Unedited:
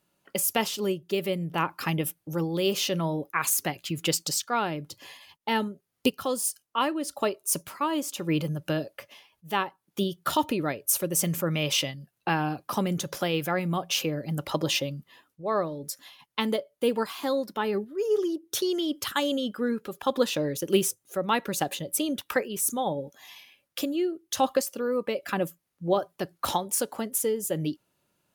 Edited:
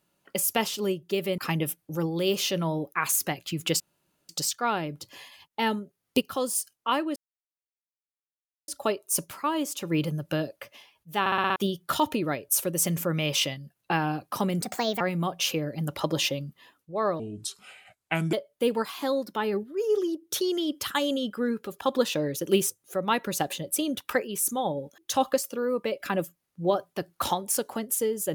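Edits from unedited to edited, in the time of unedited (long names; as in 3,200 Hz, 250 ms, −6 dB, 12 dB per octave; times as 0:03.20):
0:01.38–0:01.76: remove
0:04.18: splice in room tone 0.49 s
0:07.05: splice in silence 1.52 s
0:09.57: stutter in place 0.06 s, 6 plays
0:12.99–0:13.51: play speed 135%
0:15.70–0:16.54: play speed 74%
0:23.19–0:24.21: remove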